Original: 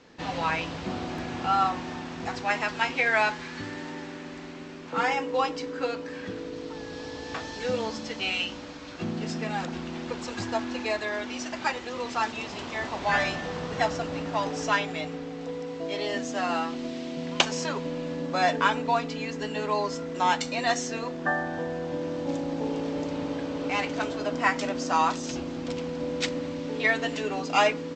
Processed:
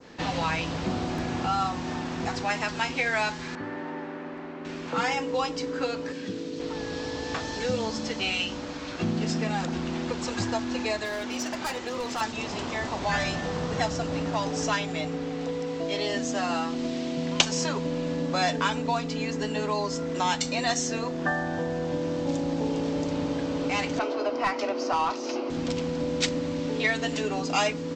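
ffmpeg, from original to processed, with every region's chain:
-filter_complex "[0:a]asettb=1/sr,asplit=3[a][b][c];[a]atrim=end=3.554[d];[b]atrim=start=3.55:end=4.65,asetpts=PTS-STARTPTS,afade=t=in:d=0.004:c=qsin,afade=t=out:st=1.096:d=0.004:c=qsin,lowpass=1.3k,aemphasis=mode=production:type=bsi[e];[c]atrim=start=4.646[f];[d][e]acrossfade=d=0.004:c1=hsin:c2=qsin[g];[g][f]acrossfade=d=0.004:c1=qsin:c2=hsin,asettb=1/sr,asplit=3[h][i][j];[h]atrim=end=6.124[k];[i]atrim=start=6.12:end=6.6,asetpts=PTS-STARTPTS,afade=t=in:d=0.004:c=qsin,afade=t=out:st=0.476:d=0.004:c=qsin,highpass=150,acrossover=split=410|3000[l][m][n];[m]acompressor=threshold=-55dB:ratio=2.5:attack=3.2:release=140:knee=2.83:detection=peak[o];[l][o][n]amix=inputs=3:normalize=0[p];[j]atrim=start=6.596[q];[k][p]acrossfade=d=0.004:c1=hsin:c2=qsin[r];[r][q]acrossfade=d=0.004:c1=qsin:c2=hsin,asettb=1/sr,asplit=3[s][t][u];[s]atrim=end=11.054[v];[t]atrim=start=11.05:end=12.21,asetpts=PTS-STARTPTS,afade=t=in:d=0.004:c=qsin,afade=t=out:st=1.156:d=0.004:c=qsin,lowshelf=f=130:g=-6.5,volume=29dB,asoftclip=hard,volume=-29dB[w];[u]atrim=start=12.206[x];[v][w]acrossfade=d=0.004:c1=hsin:c2=qsin[y];[y][x]acrossfade=d=0.004:c1=qsin:c2=hsin,asettb=1/sr,asplit=3[z][aa][ab];[z]atrim=end=23.994[ac];[aa]atrim=start=23.99:end=25.5,asetpts=PTS-STARTPTS,afade=t=in:d=0.004:c=qsin,afade=t=out:st=1.506:d=0.004:c=qsin,highpass=f=290:w=0.5412,highpass=f=290:w=1.3066,equalizer=f=370:t=q:w=4:g=4,equalizer=f=1.7k:t=q:w=4:g=-8,equalizer=f=3.5k:t=q:w=4:g=-8,lowpass=f=5.4k:w=0.5412,lowpass=f=5.4k:w=1.3066,asplit=2[ad][ae];[ae]highpass=f=720:p=1,volume=13dB,asoftclip=type=tanh:threshold=-11.5dB[af];[ad][af]amix=inputs=2:normalize=0,lowpass=f=1.9k:p=1,volume=-6dB[ag];[ab]atrim=start=25.496[ah];[ac][ag]acrossfade=d=0.004:c1=hsin:c2=qsin[ai];[ai][ah]acrossfade=d=0.004:c1=qsin:c2=hsin,acrossover=split=200|3000[aj][ak][al];[ak]acompressor=threshold=-37dB:ratio=2[am];[aj][am][al]amix=inputs=3:normalize=0,adynamicequalizer=threshold=0.00501:dfrequency=2900:dqfactor=0.73:tfrequency=2900:tqfactor=0.73:attack=5:release=100:ratio=0.375:range=2:mode=cutabove:tftype=bell,volume=6dB"

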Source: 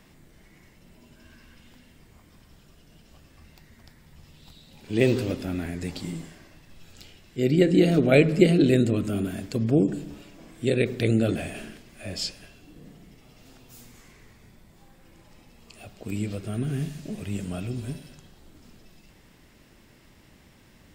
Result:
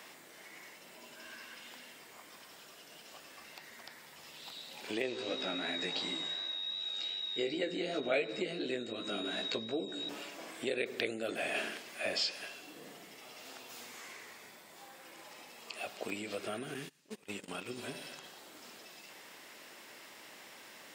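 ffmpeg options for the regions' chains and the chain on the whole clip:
-filter_complex "[0:a]asettb=1/sr,asplit=3[a][b][c];[a]atrim=end=5.024[d];[b]atrim=start=5.02:end=10.09,asetpts=PTS-STARTPTS,afade=t=in:d=0.004:c=qsin,afade=t=out:st=5.066:d=0.004:c=qsin,lowpass=f=7.5k:w=0.5412,lowpass=f=7.5k:w=1.3066,aeval=exprs='val(0)+0.01*sin(2*PI*3800*n/s)':c=same,flanger=delay=15:depth=3.2:speed=2.7[e];[c]atrim=start=10.086[f];[d][e]acrossfade=d=0.004:c1=hsin:c2=qsin[g];[g][f]acrossfade=d=0.004:c1=qsin:c2=hsin,asettb=1/sr,asplit=3[h][i][j];[h]atrim=end=16.744[k];[i]atrim=start=16.74:end=17.79,asetpts=PTS-STARTPTS,afade=t=in:d=0.004:c=qsin,afade=t=out:st=1.046:d=0.004:c=qsin,agate=range=-26dB:threshold=-32dB:ratio=16:release=100:detection=peak,equalizer=f=660:w=5.4:g=-13[l];[j]atrim=start=17.786[m];[k][l]acrossfade=d=0.004:c1=hsin:c2=qsin[n];[n][m]acrossfade=d=0.004:c1=qsin:c2=hsin,acompressor=threshold=-31dB:ratio=16,highpass=560,acrossover=split=4900[o][p];[p]acompressor=threshold=-60dB:ratio=4:attack=1:release=60[q];[o][q]amix=inputs=2:normalize=0,volume=7.5dB"

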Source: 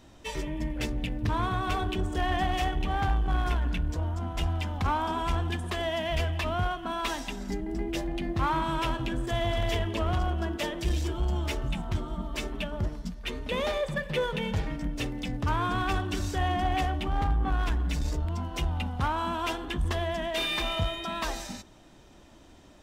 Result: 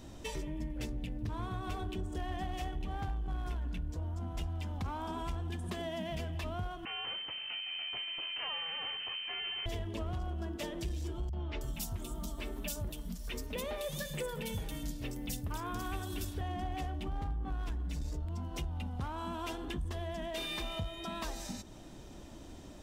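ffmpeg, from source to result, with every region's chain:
-filter_complex "[0:a]asettb=1/sr,asplit=3[a][b][c];[a]atrim=end=5.684[d];[b]atrim=start=5.68:end=6.35,asetpts=PTS-STARTPTS,afade=t=in:d=0.004:c=qsin,afade=t=out:st=0.666:d=0.004:c=qsin,highpass=f=110:p=1,equalizer=f=200:w=2:g=10.5[e];[c]atrim=start=6.346[f];[d][e]acrossfade=d=0.004:c1=hsin:c2=qsin[g];[g][f]acrossfade=d=0.004:c1=qsin:c2=hsin,asettb=1/sr,asplit=3[h][i][j];[h]atrim=end=6.854[k];[i]atrim=start=6.85:end=9.66,asetpts=PTS-STARTPTS,afade=t=in:d=0.004:c=qsin,afade=t=out:st=2.806:d=0.004:c=qsin,highpass=160,aeval=exprs='abs(val(0))':c=same,lowpass=f=2.6k:t=q:w=0.5098,lowpass=f=2.6k:t=q:w=0.6013,lowpass=f=2.6k:t=q:w=0.9,lowpass=f=2.6k:t=q:w=2.563,afreqshift=-3100[l];[j]atrim=start=9.656[m];[k][l]acrossfade=d=0.004:c1=hsin:c2=qsin[n];[n][m]acrossfade=d=0.004:c1=qsin:c2=hsin,asettb=1/sr,asplit=3[o][p][q];[o]atrim=end=11.294[r];[p]atrim=start=11.29:end=16.41,asetpts=PTS-STARTPTS,afade=t=in:d=0.004:c=qsin,afade=t=out:st=5.116:d=0.004:c=qsin,aemphasis=mode=production:type=75fm,acrossover=split=150|3200[s][t][u];[t]adelay=40[v];[u]adelay=320[w];[s][v][w]amix=inputs=3:normalize=0,atrim=end_sample=225792[x];[q]atrim=start=16.406[y];[r][x]acrossfade=d=0.004:c1=hsin:c2=qsin[z];[z][y]acrossfade=d=0.004:c1=qsin:c2=hsin,equalizer=f=1.7k:w=0.41:g=-6.5,acompressor=threshold=-45dB:ratio=3,volume=5.5dB"

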